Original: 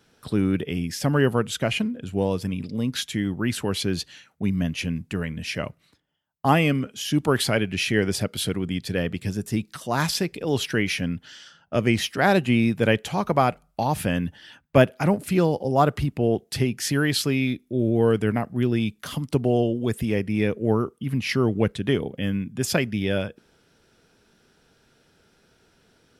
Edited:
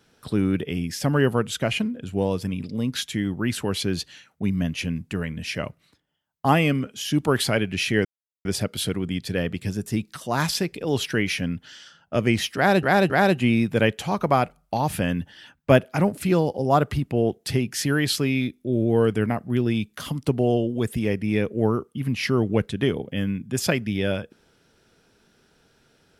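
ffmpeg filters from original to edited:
ffmpeg -i in.wav -filter_complex "[0:a]asplit=4[link_01][link_02][link_03][link_04];[link_01]atrim=end=8.05,asetpts=PTS-STARTPTS,afade=type=out:start_time=8.046:duration=0.004:curve=hsin,apad=pad_dur=0.4[link_05];[link_02]atrim=start=8.05:end=12.432,asetpts=PTS-STARTPTS,afade=type=in:duration=0.004:curve=hsin[link_06];[link_03]atrim=start=12.158:end=12.432[link_07];[link_04]atrim=start=12.158[link_08];[link_05][link_06]concat=n=2:v=0:a=1[link_09];[link_09][link_07]acrossfade=duration=0.004:curve1=hsin:curve2=hsin[link_10];[link_10][link_08]acrossfade=duration=0.004:curve1=hsin:curve2=hsin" out.wav

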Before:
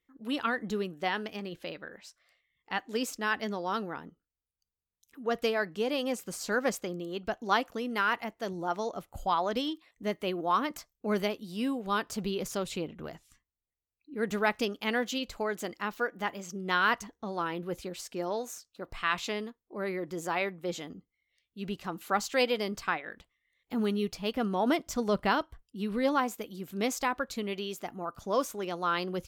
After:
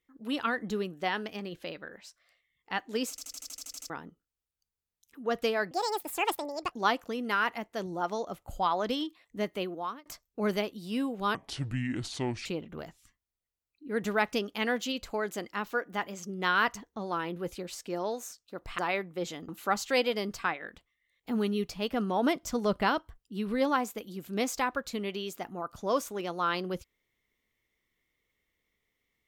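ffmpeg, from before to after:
ffmpeg -i in.wav -filter_complex "[0:a]asplit=18[link_01][link_02][link_03][link_04][link_05][link_06][link_07][link_08][link_09][link_10][link_11][link_12][link_13][link_14][link_15][link_16][link_17][link_18];[link_01]atrim=end=3.182[link_19];[link_02]atrim=start=3.098:end=3.182[link_20];[link_03]atrim=start=3.098:end=3.182[link_21];[link_04]atrim=start=3.098:end=3.182[link_22];[link_05]atrim=start=3.098:end=3.182[link_23];[link_06]atrim=start=3.098:end=3.182[link_24];[link_07]atrim=start=3.098:end=3.182[link_25];[link_08]atrim=start=3.098:end=3.182[link_26];[link_09]atrim=start=3.098:end=3.182[link_27];[link_10]atrim=start=3.098:end=3.182[link_28];[link_11]atrim=start=3.898:end=5.714[link_29];[link_12]atrim=start=5.71:end=7.38,asetpts=PTS-STARTPTS,asetrate=73206,aresample=44100[link_30];[link_13]atrim=start=7.376:end=10.72,asetpts=PTS-STARTPTS,afade=type=out:start_time=2.824:duration=0.52[link_31];[link_14]atrim=start=10.72:end=12.014,asetpts=PTS-STARTPTS,afade=type=in:duration=0.004:curve=hsin[link_32];[link_15]atrim=start=12.01:end=12.72,asetpts=PTS-STARTPTS,asetrate=28224,aresample=44100,atrim=end_sample=48923,asetpts=PTS-STARTPTS[link_33];[link_16]atrim=start=12.716:end=19.052[link_34];[link_17]atrim=start=20.258:end=20.962[link_35];[link_18]atrim=start=21.918[link_36];[link_19][link_20]acrossfade=duration=0.004:curve1=hsin:curve2=hsin[link_37];[link_37][link_21]acrossfade=duration=0.004:curve1=hsin:curve2=hsin[link_38];[link_38][link_22]acrossfade=duration=0.004:curve1=hsin:curve2=hsin[link_39];[link_39][link_23]acrossfade=duration=0.004:curve1=hsin:curve2=hsin[link_40];[link_40][link_24]acrossfade=duration=0.004:curve1=hsin:curve2=hsin[link_41];[link_41][link_25]acrossfade=duration=0.004:curve1=hsin:curve2=hsin[link_42];[link_42][link_26]acrossfade=duration=0.004:curve1=hsin:curve2=hsin[link_43];[link_43][link_27]acrossfade=duration=0.004:curve1=hsin:curve2=hsin[link_44];[link_44][link_28]acrossfade=duration=0.004:curve1=hsin:curve2=hsin[link_45];[link_45][link_29]acrossfade=duration=0.004:curve1=hsin:curve2=hsin[link_46];[link_46][link_30]acrossfade=duration=0.004:curve1=hsin:curve2=hsin[link_47];[link_31][link_32]concat=n=2:v=0:a=1[link_48];[link_47][link_48]acrossfade=duration=0.004:curve1=hsin:curve2=hsin[link_49];[link_49][link_33]acrossfade=duration=0.004:curve1=hsin:curve2=hsin[link_50];[link_50][link_34]acrossfade=duration=0.004:curve1=hsin:curve2=hsin[link_51];[link_51][link_35]acrossfade=duration=0.004:curve1=hsin:curve2=hsin[link_52];[link_52][link_36]acrossfade=duration=0.004:curve1=hsin:curve2=hsin" out.wav

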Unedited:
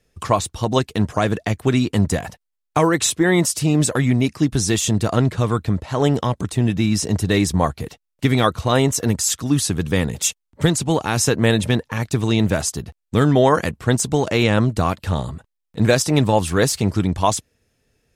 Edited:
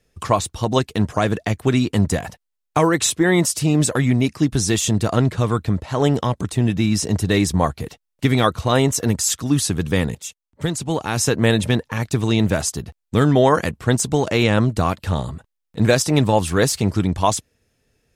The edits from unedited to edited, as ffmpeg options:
ffmpeg -i in.wav -filter_complex "[0:a]asplit=2[link_01][link_02];[link_01]atrim=end=10.15,asetpts=PTS-STARTPTS,afade=type=out:start_time=10.146:duration=0.004:curve=hsin:silence=0.16788[link_03];[link_02]atrim=start=10.15,asetpts=PTS-STARTPTS,afade=type=in:duration=1.28:silence=0.16788[link_04];[link_03][link_04]concat=n=2:v=0:a=1" out.wav

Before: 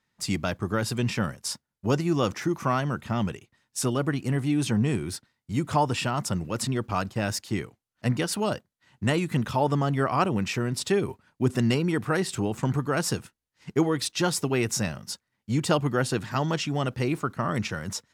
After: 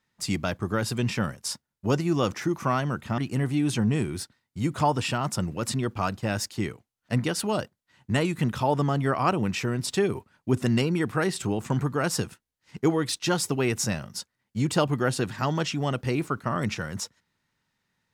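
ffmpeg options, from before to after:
ffmpeg -i in.wav -filter_complex "[0:a]asplit=2[link_01][link_02];[link_01]atrim=end=3.182[link_03];[link_02]atrim=start=4.108[link_04];[link_03][link_04]acrossfade=duration=0.004:curve1=hsin:curve2=hsin" out.wav

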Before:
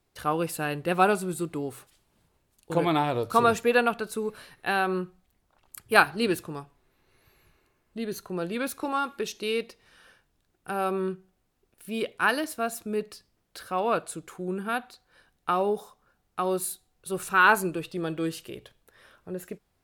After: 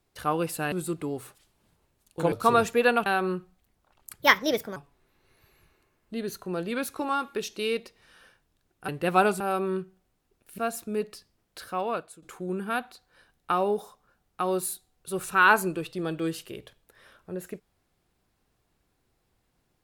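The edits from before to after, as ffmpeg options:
ffmpeg -i in.wav -filter_complex "[0:a]asplit=10[link_01][link_02][link_03][link_04][link_05][link_06][link_07][link_08][link_09][link_10];[link_01]atrim=end=0.722[link_11];[link_02]atrim=start=1.238:end=2.842[link_12];[link_03]atrim=start=3.218:end=3.962[link_13];[link_04]atrim=start=4.718:end=5.874[link_14];[link_05]atrim=start=5.87:end=6.6,asetpts=PTS-STARTPTS,asetrate=58212,aresample=44100[link_15];[link_06]atrim=start=6.596:end=10.722[link_16];[link_07]atrim=start=0.718:end=1.242[link_17];[link_08]atrim=start=10.718:end=11.902[link_18];[link_09]atrim=start=12.568:end=14.21,asetpts=PTS-STARTPTS,afade=type=out:start_time=1.072:duration=0.57:silence=0.133352[link_19];[link_10]atrim=start=14.21,asetpts=PTS-STARTPTS,afade=type=in:duration=0.004:curve=hsin:silence=0.133352[link_20];[link_11][link_12]acrossfade=duration=0.004:curve1=hsin:curve2=hsin[link_21];[link_21][link_13]acrossfade=duration=0.004:curve1=hsin:curve2=hsin[link_22];[link_22][link_14]acrossfade=duration=0.004:curve1=hsin:curve2=hsin[link_23];[link_23][link_15]acrossfade=duration=0.004:curve1=hsin:curve2=hsin[link_24];[link_24][link_16]acrossfade=duration=0.004:curve1=hsin:curve2=hsin[link_25];[link_25][link_17]acrossfade=duration=0.004:curve1=hsin:curve2=hsin[link_26];[link_26][link_18]acrossfade=duration=0.004:curve1=hsin:curve2=hsin[link_27];[link_19][link_20]concat=n=2:v=0:a=1[link_28];[link_27][link_28]acrossfade=duration=0.004:curve1=hsin:curve2=hsin" out.wav

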